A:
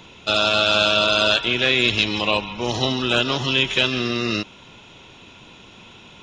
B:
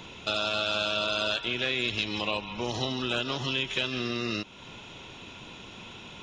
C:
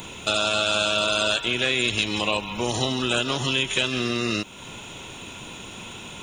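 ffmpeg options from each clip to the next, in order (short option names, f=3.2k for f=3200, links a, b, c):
-af "acompressor=threshold=-34dB:ratio=2"
-af "aexciter=amount=7.7:drive=6.7:freq=7.4k,volume=6dB"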